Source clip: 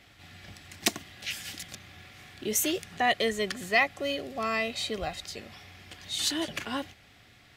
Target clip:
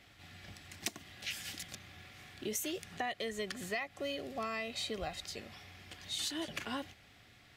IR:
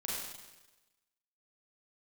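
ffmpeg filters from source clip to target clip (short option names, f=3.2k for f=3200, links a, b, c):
-af "acompressor=threshold=-30dB:ratio=10,volume=-4dB"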